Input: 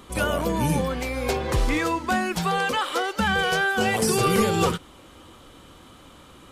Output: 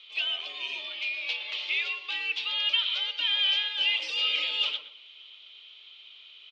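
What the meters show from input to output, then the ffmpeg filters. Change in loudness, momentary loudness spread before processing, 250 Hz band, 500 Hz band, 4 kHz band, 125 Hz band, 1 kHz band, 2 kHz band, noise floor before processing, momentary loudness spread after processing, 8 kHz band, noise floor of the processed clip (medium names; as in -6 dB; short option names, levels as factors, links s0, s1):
-3.5 dB, 6 LU, under -35 dB, -26.5 dB, +7.0 dB, under -40 dB, -21.5 dB, -4.5 dB, -49 dBFS, 9 LU, under -20 dB, -51 dBFS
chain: -filter_complex "[0:a]acrossover=split=1500[s0][s1];[s1]aexciter=amount=13.2:drive=8.6:freq=2300[s2];[s0][s2]amix=inputs=2:normalize=0,highpass=f=220:t=q:w=0.5412,highpass=f=220:t=q:w=1.307,lowpass=f=2900:t=q:w=0.5176,lowpass=f=2900:t=q:w=0.7071,lowpass=f=2900:t=q:w=1.932,afreqshift=92,aderivative,asplit=2[s3][s4];[s4]adelay=117,lowpass=f=1300:p=1,volume=0.447,asplit=2[s5][s6];[s6]adelay=117,lowpass=f=1300:p=1,volume=0.28,asplit=2[s7][s8];[s8]adelay=117,lowpass=f=1300:p=1,volume=0.28[s9];[s3][s5][s7][s9]amix=inputs=4:normalize=0,volume=0.562"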